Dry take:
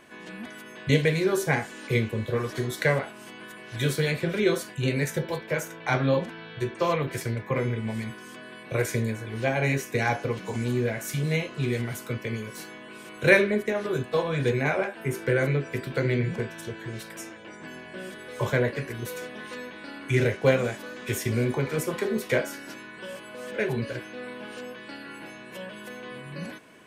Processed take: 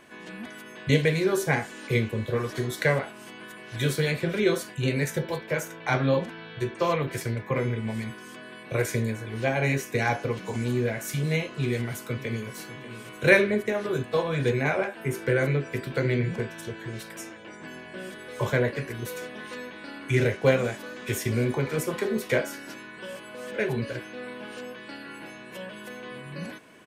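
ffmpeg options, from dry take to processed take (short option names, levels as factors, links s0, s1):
-filter_complex "[0:a]asplit=2[s0][s1];[s1]afade=t=in:st=11.53:d=0.01,afade=t=out:st=12.54:d=0.01,aecho=0:1:590|1180|1770|2360|2950|3540:0.177828|0.106697|0.0640181|0.0384108|0.0230465|0.0138279[s2];[s0][s2]amix=inputs=2:normalize=0"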